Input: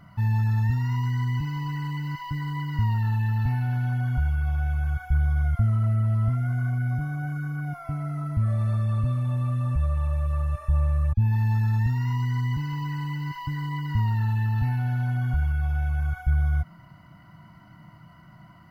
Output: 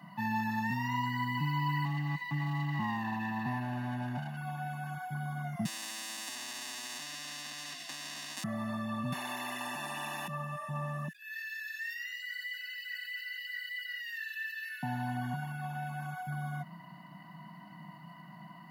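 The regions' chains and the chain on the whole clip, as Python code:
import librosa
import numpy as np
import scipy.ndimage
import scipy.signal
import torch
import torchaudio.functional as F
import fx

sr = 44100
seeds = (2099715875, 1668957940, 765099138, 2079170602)

y = fx.chain(x, sr, fx.lower_of_two(delay_ms=0.45),
    fx.high_shelf(hz=2100.0, db=-8.0), at=(1.85, 4.37))
y = fx.chain(y, sr, fx.halfwave_hold(),
    fx.vowel_filter(vowel='i'),
    fx.spectral_comp(ratio=10.0), at=(5.65, 8.44))
y = fx.chain(y, sr, fx.highpass(hz=280.0, slope=6),
    fx.high_shelf(hz=2100.0, db=-8.5),
    fx.spectral_comp(ratio=4.0), at=(9.12, 10.28))
y = fx.chain(y, sr, fx.brickwall_highpass(low_hz=1400.0),
    fx.sustainer(db_per_s=95.0), at=(11.08, 14.83))
y = scipy.signal.sosfilt(scipy.signal.butter(8, 160.0, 'highpass', fs=sr, output='sos'), y)
y = y + 0.98 * np.pad(y, (int(1.1 * sr / 1000.0), 0))[:len(y)]
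y = y * librosa.db_to_amplitude(-1.5)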